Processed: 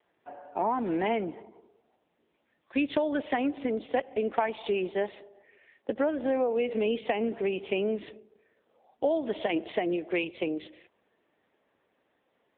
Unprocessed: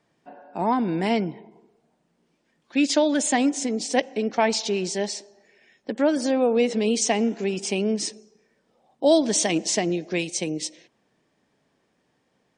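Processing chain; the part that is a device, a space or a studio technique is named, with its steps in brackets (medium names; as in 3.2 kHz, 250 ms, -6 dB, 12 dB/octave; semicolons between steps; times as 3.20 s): 3.38–5.07 s: dynamic bell 1.3 kHz, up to +3 dB, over -34 dBFS, Q 1.7; voicemail (band-pass 330–3200 Hz; compression 6:1, threshold -25 dBFS, peak gain reduction 10.5 dB; trim +2 dB; AMR-NB 6.7 kbps 8 kHz)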